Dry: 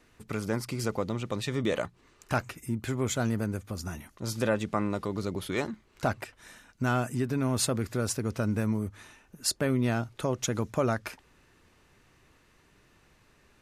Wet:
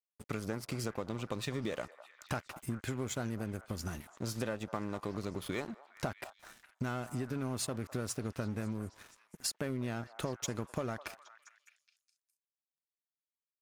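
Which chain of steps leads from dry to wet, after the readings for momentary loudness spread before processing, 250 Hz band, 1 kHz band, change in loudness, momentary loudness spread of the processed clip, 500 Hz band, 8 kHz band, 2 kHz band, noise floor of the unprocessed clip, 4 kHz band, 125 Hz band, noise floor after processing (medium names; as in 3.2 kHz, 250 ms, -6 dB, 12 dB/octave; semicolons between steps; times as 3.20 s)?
9 LU, -8.0 dB, -8.5 dB, -8.0 dB, 9 LU, -8.5 dB, -7.0 dB, -8.0 dB, -63 dBFS, -6.5 dB, -8.0 dB, under -85 dBFS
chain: compression 6:1, threshold -34 dBFS, peak gain reduction 12 dB; crossover distortion -50.5 dBFS; on a send: repeats whose band climbs or falls 205 ms, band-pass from 900 Hz, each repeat 0.7 oct, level -10.5 dB; on the sum: trim +1.5 dB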